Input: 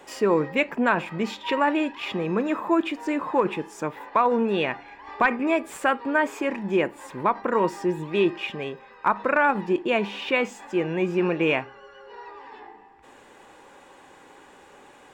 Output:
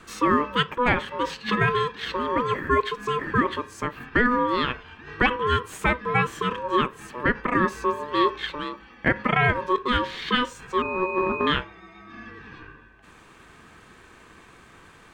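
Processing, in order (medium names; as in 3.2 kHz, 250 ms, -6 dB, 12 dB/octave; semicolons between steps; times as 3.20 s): ring modulator 740 Hz; 10.82–11.47 s: class-D stage that switches slowly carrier 2.5 kHz; trim +3 dB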